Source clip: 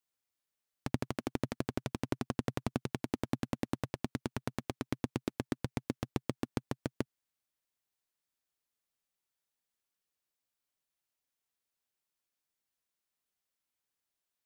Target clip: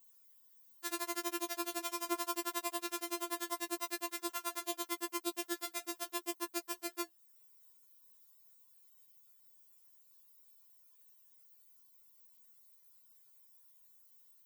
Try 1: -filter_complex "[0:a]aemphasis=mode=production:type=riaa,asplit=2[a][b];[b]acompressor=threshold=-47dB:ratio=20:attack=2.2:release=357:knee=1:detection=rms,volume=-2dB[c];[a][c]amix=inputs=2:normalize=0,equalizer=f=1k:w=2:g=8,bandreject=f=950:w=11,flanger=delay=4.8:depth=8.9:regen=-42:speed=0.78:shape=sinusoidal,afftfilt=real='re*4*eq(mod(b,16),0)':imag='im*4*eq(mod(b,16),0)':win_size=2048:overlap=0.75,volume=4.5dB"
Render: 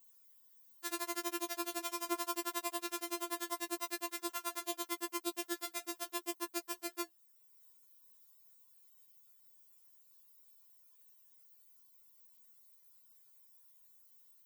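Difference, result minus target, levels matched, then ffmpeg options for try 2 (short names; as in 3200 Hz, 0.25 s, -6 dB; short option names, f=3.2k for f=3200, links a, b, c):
compressor: peak gain reduction +8.5 dB
-filter_complex "[0:a]aemphasis=mode=production:type=riaa,asplit=2[a][b];[b]acompressor=threshold=-38dB:ratio=20:attack=2.2:release=357:knee=1:detection=rms,volume=-2dB[c];[a][c]amix=inputs=2:normalize=0,equalizer=f=1k:w=2:g=8,bandreject=f=950:w=11,flanger=delay=4.8:depth=8.9:regen=-42:speed=0.78:shape=sinusoidal,afftfilt=real='re*4*eq(mod(b,16),0)':imag='im*4*eq(mod(b,16),0)':win_size=2048:overlap=0.75,volume=4.5dB"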